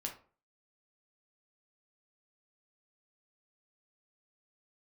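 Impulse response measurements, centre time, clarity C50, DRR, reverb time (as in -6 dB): 16 ms, 9.5 dB, 0.5 dB, 0.40 s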